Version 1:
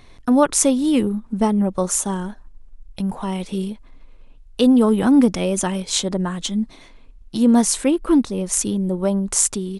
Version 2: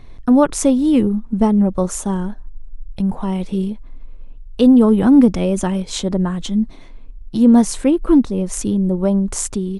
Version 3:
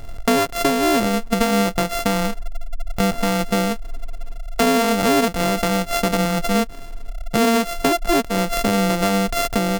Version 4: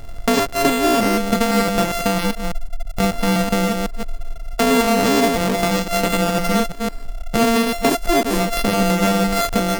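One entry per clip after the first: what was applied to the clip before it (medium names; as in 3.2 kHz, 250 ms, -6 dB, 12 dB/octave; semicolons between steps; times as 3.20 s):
tilt EQ -2 dB/octave
sorted samples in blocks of 64 samples; compression 6:1, threshold -22 dBFS, peak gain reduction 15 dB; trim +6 dB
chunks repeated in reverse 168 ms, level -4 dB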